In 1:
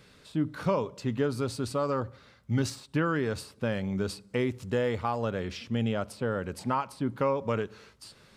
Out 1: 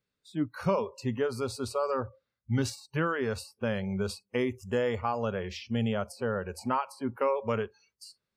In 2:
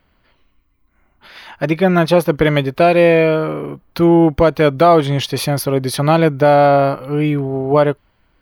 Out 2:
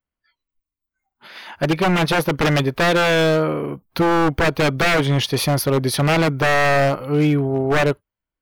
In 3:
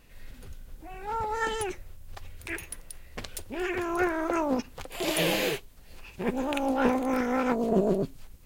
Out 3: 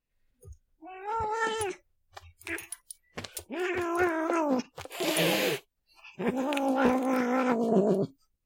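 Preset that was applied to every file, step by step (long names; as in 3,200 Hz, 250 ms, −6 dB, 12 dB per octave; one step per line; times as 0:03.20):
wave folding −11 dBFS
noise reduction from a noise print of the clip's start 29 dB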